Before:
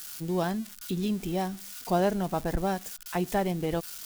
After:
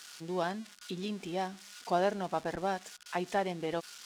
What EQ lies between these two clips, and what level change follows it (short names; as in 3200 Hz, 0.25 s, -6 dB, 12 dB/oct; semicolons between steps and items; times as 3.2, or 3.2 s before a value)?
HPF 560 Hz 6 dB/oct; air absorption 76 m; 0.0 dB